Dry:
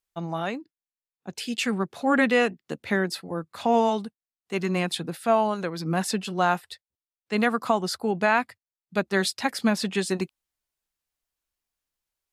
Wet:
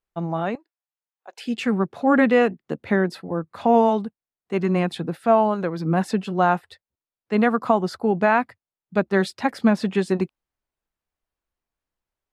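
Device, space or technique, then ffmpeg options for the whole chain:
through cloth: -filter_complex "[0:a]highshelf=frequency=2700:gain=-17,asettb=1/sr,asplit=3[link_01][link_02][link_03];[link_01]atrim=end=0.554[link_04];[link_02]atrim=start=0.55:end=1.46,asetpts=PTS-STARTPTS,afade=type=in:duration=0.004:curve=qsin,afade=type=out:start_time=0.906:duration=0.004:curve=qsin,highpass=frequency=580:width=0.5412,highpass=frequency=580:width=1.3066[link_05];[link_03]atrim=start=1.456[link_06];[link_04][link_05]acrossfade=duration=0.004:curve1=hsin:curve2=qsin[link_07];[link_07][link_06]acrossfade=duration=0.004:curve1=qsin:curve2=hsin,volume=5.5dB"

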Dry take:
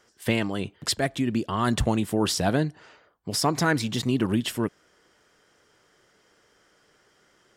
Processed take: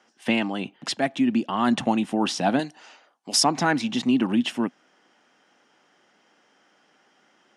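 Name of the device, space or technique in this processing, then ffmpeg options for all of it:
television speaker: -filter_complex "[0:a]asettb=1/sr,asplit=3[link_01][link_02][link_03];[link_01]atrim=end=2.594[link_04];[link_02]atrim=start=2.59:end=3.44,asetpts=PTS-STARTPTS,afade=type=in:duration=0.004:curve=qsin,afade=type=out:start_time=0.846:duration=0.004:curve=qsin,bass=frequency=250:gain=-11,treble=frequency=4000:gain=14[link_05];[link_03]atrim=start=3.436[link_06];[link_04][link_05]acrossfade=duration=0.004:curve1=hsin:curve2=qsin[link_07];[link_07][link_06]acrossfade=duration=0.004:curve1=qsin:curve2=hsin,highpass=frequency=170:width=0.5412,highpass=frequency=170:width=1.3066,equalizer=frequency=250:width_type=q:width=4:gain=7,equalizer=frequency=430:width_type=q:width=4:gain=-6,equalizer=frequency=800:width_type=q:width=4:gain=8,equalizer=frequency=2700:width_type=q:width=4:gain=5,equalizer=frequency=4600:width_type=q:width=4:gain=-4,equalizer=frequency=7700:width_type=q:width=4:gain=-8,lowpass=frequency=8500:width=0.5412,lowpass=frequency=8500:width=1.3066"

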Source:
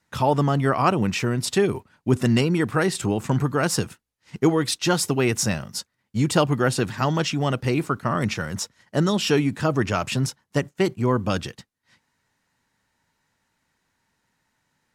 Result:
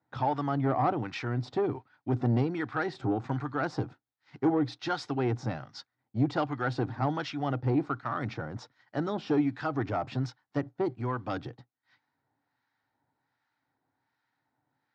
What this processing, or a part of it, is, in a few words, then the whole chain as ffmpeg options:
guitar amplifier with harmonic tremolo: -filter_complex "[0:a]acrossover=split=990[link_01][link_02];[link_01]aeval=exprs='val(0)*(1-0.7/2+0.7/2*cos(2*PI*1.3*n/s))':channel_layout=same[link_03];[link_02]aeval=exprs='val(0)*(1-0.7/2-0.7/2*cos(2*PI*1.3*n/s))':channel_layout=same[link_04];[link_03][link_04]amix=inputs=2:normalize=0,asoftclip=type=tanh:threshold=-17dB,highpass=110,equalizer=frequency=120:width_type=q:width=4:gain=9,equalizer=frequency=190:width_type=q:width=4:gain=-9,equalizer=frequency=290:width_type=q:width=4:gain=9,equalizer=frequency=770:width_type=q:width=4:gain=10,equalizer=frequency=1400:width_type=q:width=4:gain=4,equalizer=frequency=2800:width_type=q:width=4:gain=-7,lowpass=frequency=4400:width=0.5412,lowpass=frequency=4400:width=1.3066,asettb=1/sr,asplit=3[link_05][link_06][link_07];[link_05]atrim=end=5.464[link_08];[link_06]atrim=start=5.46:end=6.36,asetpts=PTS-STARTPTS,afade=type=in:duration=0.004:curve=qsin,afade=type=out:start_time=0.896:duration=0.004:curve=qsin,lowpass=frequency=7600:width=0.5412,lowpass=frequency=7600:width=1.3066[link_09];[link_07]atrim=start=6.356[link_10];[link_08][link_09]acrossfade=duration=0.004:curve1=hsin:curve2=qsin[link_11];[link_11][link_10]acrossfade=duration=0.004:curve1=qsin:curve2=hsin,volume=-6dB"

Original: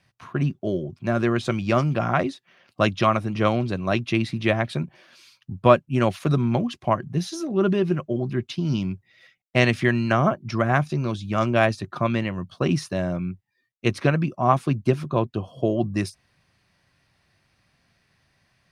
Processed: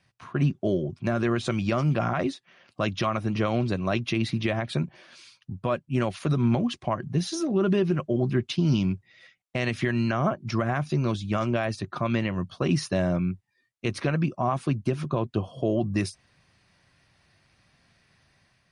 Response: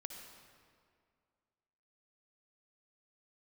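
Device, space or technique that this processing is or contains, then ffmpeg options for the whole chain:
low-bitrate web radio: -af "dynaudnorm=framelen=110:gausssize=7:maxgain=4.5dB,alimiter=limit=-12dB:level=0:latency=1:release=109,volume=-2dB" -ar 44100 -c:a libmp3lame -b:a 48k

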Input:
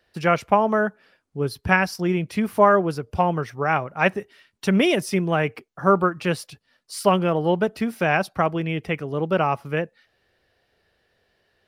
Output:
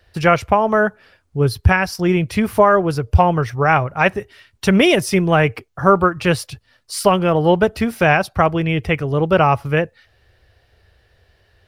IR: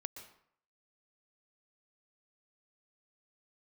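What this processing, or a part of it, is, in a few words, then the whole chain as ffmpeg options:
car stereo with a boomy subwoofer: -af "lowshelf=frequency=130:width_type=q:width=1.5:gain=11.5,alimiter=limit=-9.5dB:level=0:latency=1:release=367,volume=7.5dB"

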